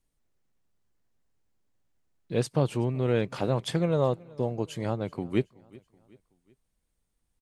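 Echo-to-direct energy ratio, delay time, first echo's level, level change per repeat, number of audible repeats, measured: -23.0 dB, 376 ms, -24.0 dB, -6.5 dB, 2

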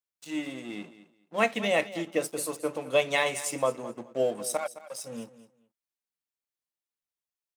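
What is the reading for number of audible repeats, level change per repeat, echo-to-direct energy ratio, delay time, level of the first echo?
2, -14.0 dB, -15.5 dB, 214 ms, -15.5 dB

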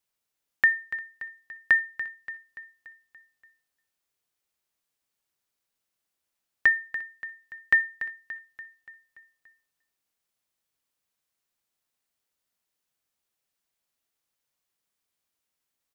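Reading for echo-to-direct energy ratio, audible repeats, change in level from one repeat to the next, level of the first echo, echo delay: -11.5 dB, 5, -5.0 dB, -13.0 dB, 288 ms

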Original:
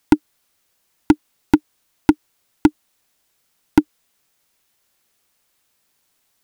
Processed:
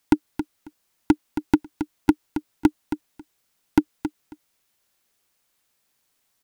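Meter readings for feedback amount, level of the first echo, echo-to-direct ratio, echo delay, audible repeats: 15%, -10.0 dB, -10.0 dB, 272 ms, 2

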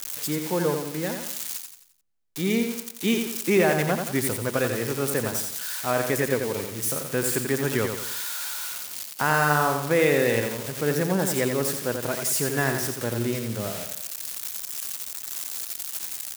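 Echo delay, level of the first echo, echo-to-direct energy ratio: 87 ms, -6.0 dB, -5.0 dB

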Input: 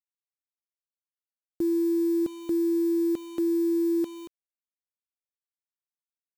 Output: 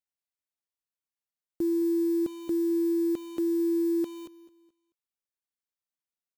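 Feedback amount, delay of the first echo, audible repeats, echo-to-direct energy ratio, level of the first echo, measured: 34%, 216 ms, 2, -17.5 dB, -18.0 dB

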